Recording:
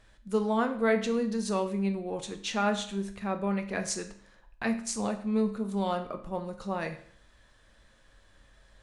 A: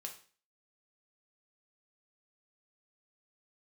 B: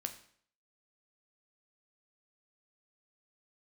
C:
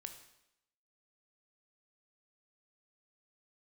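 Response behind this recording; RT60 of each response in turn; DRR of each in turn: B; 0.40, 0.60, 0.85 s; 1.5, 6.0, 6.0 dB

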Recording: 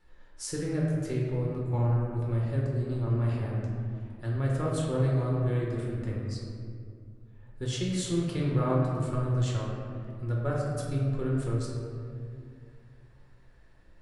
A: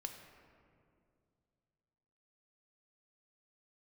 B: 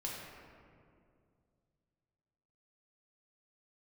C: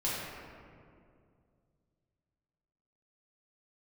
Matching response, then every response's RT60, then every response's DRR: B; 2.4, 2.3, 2.3 s; 4.5, -4.0, -8.0 dB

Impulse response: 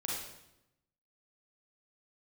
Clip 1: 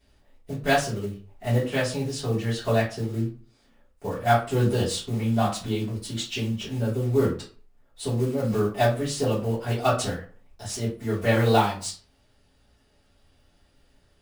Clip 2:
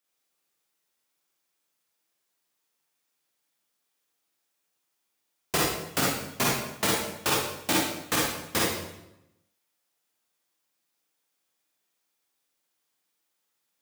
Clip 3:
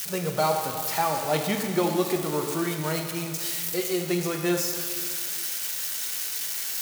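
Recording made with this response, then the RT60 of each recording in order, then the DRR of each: 2; 0.40, 0.85, 2.2 s; -10.0, -4.5, 3.5 dB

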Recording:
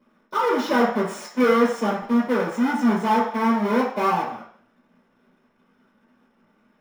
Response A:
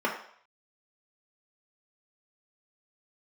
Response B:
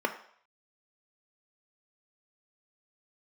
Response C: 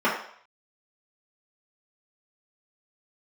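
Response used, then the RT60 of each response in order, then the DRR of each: C; 0.60, 0.60, 0.60 s; -2.0, 5.0, -8.0 dB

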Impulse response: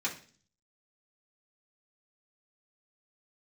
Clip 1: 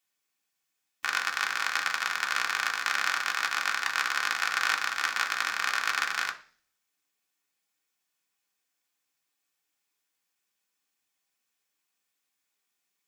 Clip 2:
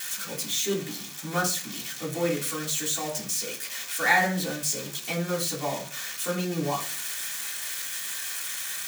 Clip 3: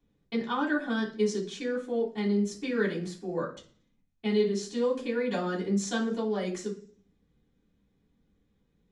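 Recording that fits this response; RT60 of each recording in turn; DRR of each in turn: 2; 0.40, 0.40, 0.40 s; 1.5, -6.5, -11.5 dB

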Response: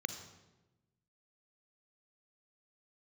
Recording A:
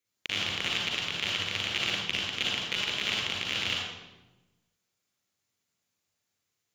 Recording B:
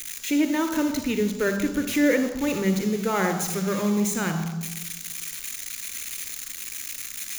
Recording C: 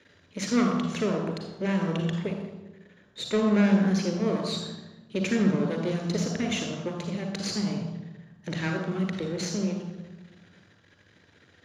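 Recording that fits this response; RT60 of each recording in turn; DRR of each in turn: B; 1.1, 1.1, 1.1 s; -2.5, 9.0, 4.0 dB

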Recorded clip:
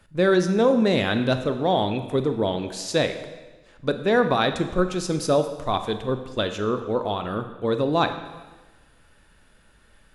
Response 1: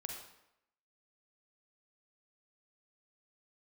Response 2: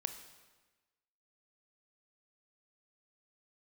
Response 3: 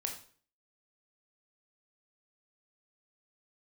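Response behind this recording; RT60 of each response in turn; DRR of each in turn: 2; 0.80, 1.2, 0.45 s; 1.5, 8.0, 2.0 dB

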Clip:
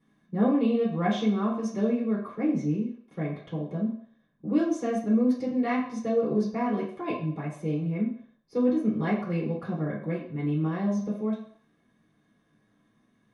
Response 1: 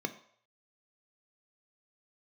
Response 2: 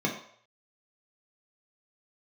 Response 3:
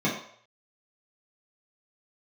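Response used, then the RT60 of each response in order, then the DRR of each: 3; 0.60, 0.60, 0.60 s; 8.0, -2.0, -7.5 dB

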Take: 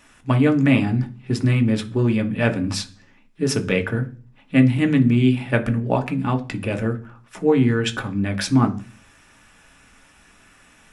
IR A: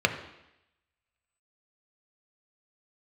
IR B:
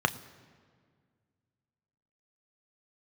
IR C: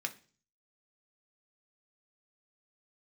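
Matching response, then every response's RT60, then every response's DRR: C; 0.85, 1.9, 0.40 s; 5.0, 9.5, 4.5 dB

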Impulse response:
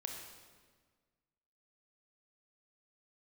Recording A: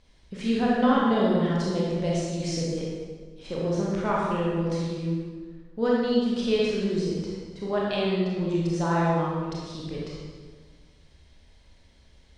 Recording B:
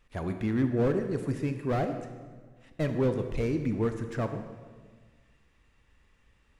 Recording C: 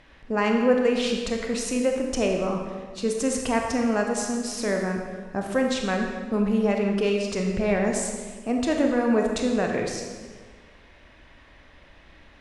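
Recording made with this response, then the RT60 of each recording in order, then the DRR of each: C; 1.6, 1.6, 1.6 s; -5.5, 6.5, 1.5 dB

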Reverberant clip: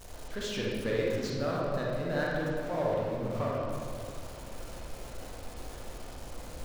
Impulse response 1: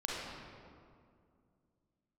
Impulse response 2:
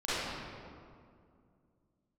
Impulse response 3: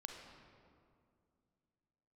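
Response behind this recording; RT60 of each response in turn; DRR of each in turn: 1; 2.3, 2.3, 2.3 s; -4.5, -13.5, 2.5 dB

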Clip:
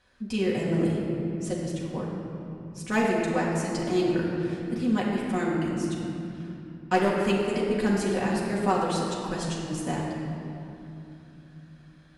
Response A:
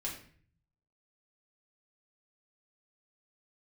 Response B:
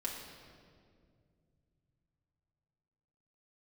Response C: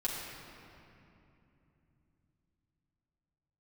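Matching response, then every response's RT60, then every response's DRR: C; 0.50, 2.2, 2.9 s; -4.5, -4.0, -6.0 dB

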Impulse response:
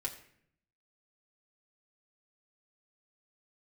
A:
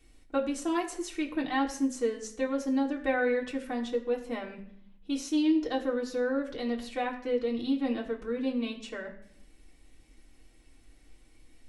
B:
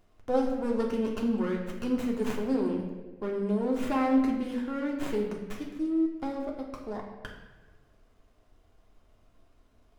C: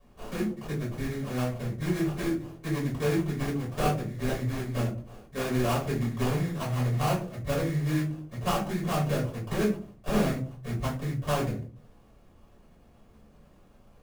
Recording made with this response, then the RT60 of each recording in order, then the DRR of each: A; 0.65, 1.2, 0.45 s; -2.0, -1.5, -6.0 dB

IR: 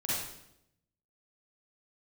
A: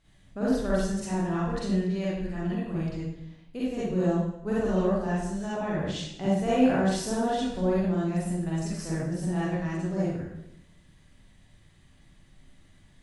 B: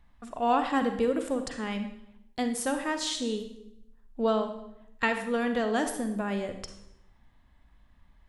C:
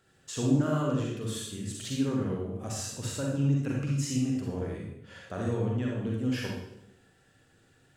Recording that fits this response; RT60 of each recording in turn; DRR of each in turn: A; 0.80, 0.80, 0.80 s; -9.0, 7.0, -2.5 dB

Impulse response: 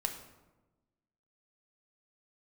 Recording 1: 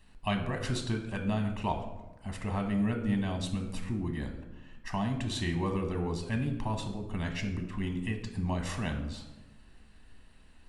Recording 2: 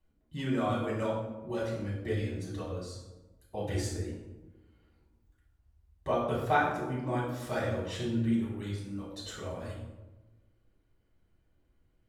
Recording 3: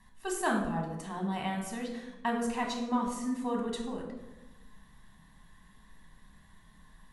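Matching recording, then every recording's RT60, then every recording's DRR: 1; 1.1, 1.1, 1.1 s; 4.0, -5.0, -0.5 dB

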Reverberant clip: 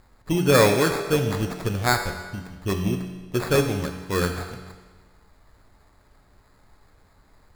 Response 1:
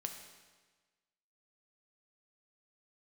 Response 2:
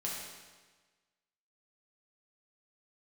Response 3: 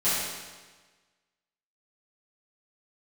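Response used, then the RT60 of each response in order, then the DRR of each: 1; 1.4, 1.4, 1.4 s; 4.0, -5.0, -15.0 dB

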